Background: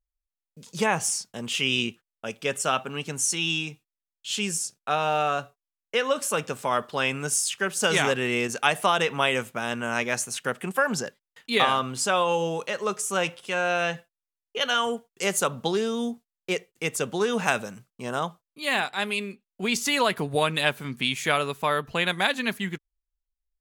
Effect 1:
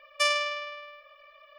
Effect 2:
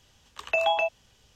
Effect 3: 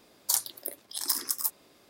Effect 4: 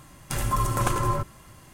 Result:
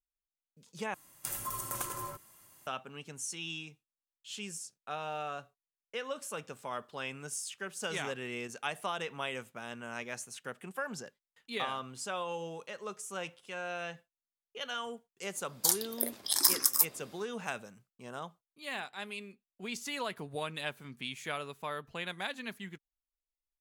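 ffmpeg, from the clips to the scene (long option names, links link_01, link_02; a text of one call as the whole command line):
ffmpeg -i bed.wav -i cue0.wav -i cue1.wav -i cue2.wav -i cue3.wav -filter_complex "[0:a]volume=-14dB[link_01];[4:a]aemphasis=mode=production:type=bsi[link_02];[3:a]dynaudnorm=framelen=110:gausssize=5:maxgain=13.5dB[link_03];[link_01]asplit=2[link_04][link_05];[link_04]atrim=end=0.944[link_06];[link_02]atrim=end=1.73,asetpts=PTS-STARTPTS,volume=-14dB[link_07];[link_05]atrim=start=2.666[link_08];[link_03]atrim=end=1.89,asetpts=PTS-STARTPTS,volume=-2.5dB,afade=type=in:duration=0.004:curve=hsin,afade=type=out:start_time=1.886:duration=0.004:curve=hsin,adelay=15350[link_09];[link_06][link_07]acrossfade=duration=0.004:curve1=hsin:curve2=hsin[link_10];[link_10][link_08]acrossfade=duration=0.004:curve1=hsin:curve2=hsin[link_11];[link_11][link_09]amix=inputs=2:normalize=0" out.wav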